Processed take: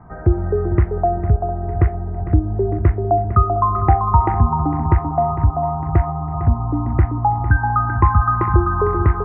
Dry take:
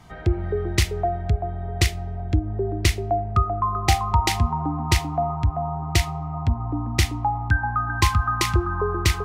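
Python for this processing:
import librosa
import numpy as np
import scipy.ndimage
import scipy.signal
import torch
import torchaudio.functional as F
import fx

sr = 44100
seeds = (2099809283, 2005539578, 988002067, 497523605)

p1 = scipy.signal.sosfilt(scipy.signal.butter(6, 1500.0, 'lowpass', fs=sr, output='sos'), x)
p2 = p1 + fx.echo_feedback(p1, sr, ms=454, feedback_pct=50, wet_db=-12.5, dry=0)
y = p2 * librosa.db_to_amplitude(6.0)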